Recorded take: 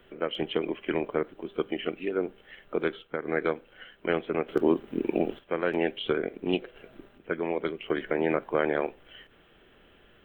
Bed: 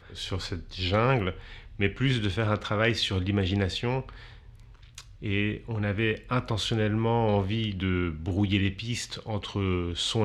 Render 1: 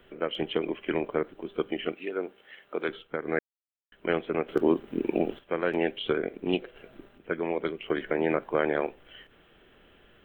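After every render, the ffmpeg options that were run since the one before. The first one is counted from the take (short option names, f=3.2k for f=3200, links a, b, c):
-filter_complex "[0:a]asettb=1/sr,asplit=3[a][b][c];[a]atrim=end=1.934[d];[b]atrim=start=1.93:end=2.89,asetpts=PTS-STARTPTS,afade=t=in:d=0.004:c=qsin,afade=t=out:st=0.956:d=0.004:c=qsin,highpass=f=440:p=1[e];[c]atrim=start=2.886[f];[d][e]acrossfade=d=0.004:c1=hsin:c2=qsin[g];[g][f]acrossfade=d=0.004:c1=qsin:c2=hsin,asplit=3[h][i][j];[h]atrim=end=3.39,asetpts=PTS-STARTPTS,afade=t=out:st=3.386:d=0.004:c=hsin[k];[i]atrim=start=3.39:end=3.92,asetpts=PTS-STARTPTS,volume=0[l];[j]atrim=start=3.92,asetpts=PTS-STARTPTS,afade=t=in:d=0.004:c=hsin[m];[k][l][m]concat=n=3:v=0:a=1"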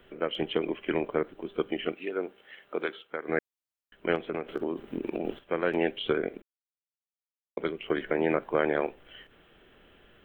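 -filter_complex "[0:a]asettb=1/sr,asplit=3[a][b][c];[a]atrim=end=2.864[d];[b]atrim=start=2.86:end=3.29,asetpts=PTS-STARTPTS,afade=t=in:d=0.004:c=qsin,afade=t=out:st=0.426:d=0.004:c=qsin,highpass=f=520:p=1[e];[c]atrim=start=3.286[f];[d][e]acrossfade=d=0.004:c1=hsin:c2=qsin[g];[g][f]acrossfade=d=0.004:c1=qsin:c2=hsin,asettb=1/sr,asplit=3[h][i][j];[h]atrim=end=4.154[k];[i]atrim=start=4.15:end=5.25,asetpts=PTS-STARTPTS,afade=t=in:d=0.004:c=qsin,afade=t=out:st=1.096:d=0.004:c=qsin,acompressor=threshold=-26dB:ratio=10:attack=3.2:release=140:knee=1:detection=peak[l];[j]atrim=start=5.246[m];[k][l]acrossfade=d=0.004:c1=hsin:c2=qsin[n];[n][m]acrossfade=d=0.004:c1=qsin:c2=hsin,asplit=3[o][p][q];[o]atrim=end=6.42,asetpts=PTS-STARTPTS,afade=t=out:st=6.416:d=0.004:c=hsin[r];[p]atrim=start=6.42:end=7.57,asetpts=PTS-STARTPTS,volume=0[s];[q]atrim=start=7.57,asetpts=PTS-STARTPTS,afade=t=in:d=0.004:c=hsin[t];[r][s][t]concat=n=3:v=0:a=1"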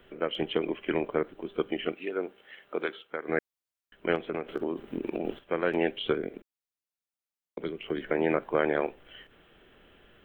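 -filter_complex "[0:a]asettb=1/sr,asplit=3[a][b][c];[a]atrim=end=6.144[d];[b]atrim=start=6.14:end=8.05,asetpts=PTS-STARTPTS,afade=t=in:d=0.004:c=qsin,afade=t=out:st=1.906:d=0.004:c=qsin,acrossover=split=420|3000[e][f][g];[f]acompressor=threshold=-40dB:ratio=6:attack=3.2:release=140:knee=2.83:detection=peak[h];[e][h][g]amix=inputs=3:normalize=0[i];[c]atrim=start=8.046[j];[d][i]acrossfade=d=0.004:c1=hsin:c2=qsin[k];[k][j]acrossfade=d=0.004:c1=qsin:c2=hsin"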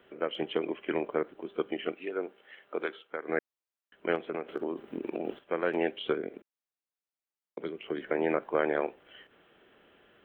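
-af "highpass=f=290:p=1,highshelf=f=2.8k:g=-7.5"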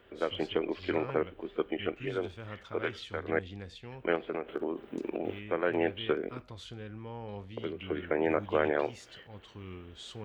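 -filter_complex "[1:a]volume=-17.5dB[a];[0:a][a]amix=inputs=2:normalize=0"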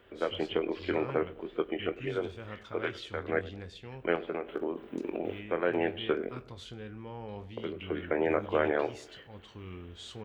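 -filter_complex "[0:a]asplit=2[a][b];[b]adelay=23,volume=-12dB[c];[a][c]amix=inputs=2:normalize=0,asplit=2[d][e];[e]adelay=102,lowpass=f=1k:p=1,volume=-17dB,asplit=2[f][g];[g]adelay=102,lowpass=f=1k:p=1,volume=0.53,asplit=2[h][i];[i]adelay=102,lowpass=f=1k:p=1,volume=0.53,asplit=2[j][k];[k]adelay=102,lowpass=f=1k:p=1,volume=0.53,asplit=2[l][m];[m]adelay=102,lowpass=f=1k:p=1,volume=0.53[n];[d][f][h][j][l][n]amix=inputs=6:normalize=0"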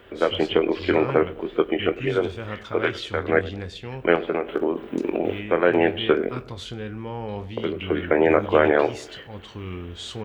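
-af "volume=10.5dB,alimiter=limit=-3dB:level=0:latency=1"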